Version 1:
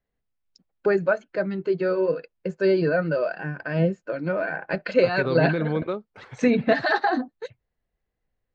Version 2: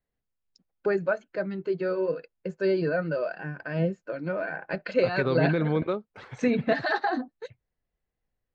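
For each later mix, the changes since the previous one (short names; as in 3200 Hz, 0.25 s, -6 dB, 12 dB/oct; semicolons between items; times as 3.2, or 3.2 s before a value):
first voice -4.5 dB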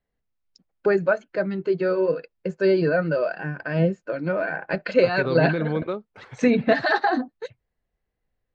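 first voice +5.5 dB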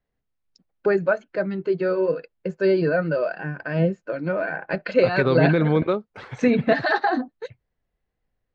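first voice: add high shelf 7800 Hz -8 dB; second voice +6.0 dB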